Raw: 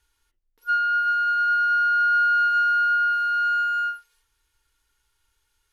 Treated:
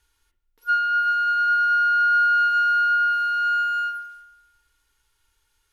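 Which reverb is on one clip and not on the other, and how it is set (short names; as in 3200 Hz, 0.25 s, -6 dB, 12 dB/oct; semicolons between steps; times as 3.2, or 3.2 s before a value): spring tank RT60 1.1 s, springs 53 ms, chirp 75 ms, DRR 13.5 dB; gain +2 dB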